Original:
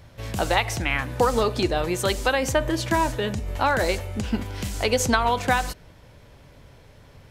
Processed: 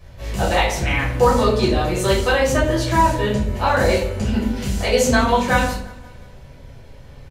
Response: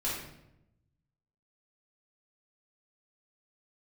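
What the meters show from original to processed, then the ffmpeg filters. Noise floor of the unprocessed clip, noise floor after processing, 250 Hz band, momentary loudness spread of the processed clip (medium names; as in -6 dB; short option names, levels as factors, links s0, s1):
-50 dBFS, -41 dBFS, +6.5 dB, 7 LU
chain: -filter_complex "[0:a]aecho=1:1:176|352|528|704:0.0794|0.0461|0.0267|0.0155[s0];[1:a]atrim=start_sample=2205,asetrate=74970,aresample=44100[s1];[s0][s1]afir=irnorm=-1:irlink=0,volume=1.33"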